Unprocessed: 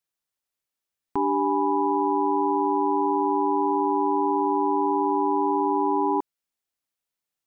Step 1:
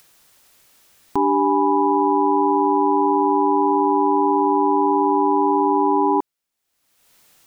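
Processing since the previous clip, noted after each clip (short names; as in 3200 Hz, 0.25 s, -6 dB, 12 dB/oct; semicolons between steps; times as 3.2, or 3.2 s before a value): upward compressor, threshold -39 dBFS; gain +5.5 dB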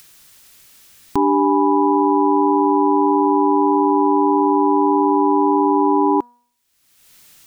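bell 650 Hz -8 dB 2.1 oct; de-hum 241.4 Hz, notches 7; gain +7.5 dB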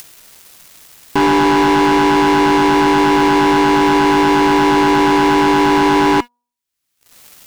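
sample leveller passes 5; gain -3.5 dB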